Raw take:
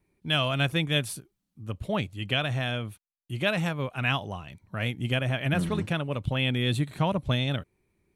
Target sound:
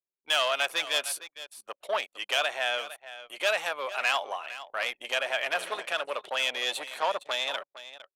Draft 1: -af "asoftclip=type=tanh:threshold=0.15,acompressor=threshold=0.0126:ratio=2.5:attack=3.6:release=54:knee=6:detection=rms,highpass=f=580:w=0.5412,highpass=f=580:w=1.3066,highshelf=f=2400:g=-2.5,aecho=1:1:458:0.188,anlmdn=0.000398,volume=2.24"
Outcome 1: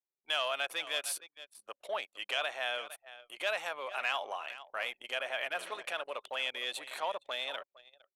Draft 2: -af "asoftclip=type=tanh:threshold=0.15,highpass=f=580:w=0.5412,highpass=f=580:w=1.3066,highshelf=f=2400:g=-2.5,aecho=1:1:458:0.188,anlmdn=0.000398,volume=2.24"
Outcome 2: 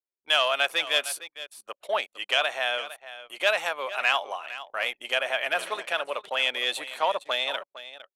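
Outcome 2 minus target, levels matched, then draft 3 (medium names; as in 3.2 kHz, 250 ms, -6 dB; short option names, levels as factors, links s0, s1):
saturation: distortion -9 dB
-af "asoftclip=type=tanh:threshold=0.0631,highpass=f=580:w=0.5412,highpass=f=580:w=1.3066,highshelf=f=2400:g=-2.5,aecho=1:1:458:0.188,anlmdn=0.000398,volume=2.24"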